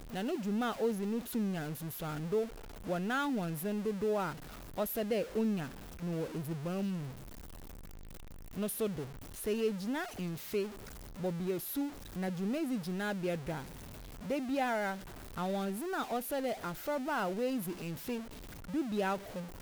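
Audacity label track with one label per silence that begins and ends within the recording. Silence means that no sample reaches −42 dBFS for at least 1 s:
7.100000	8.560000	silence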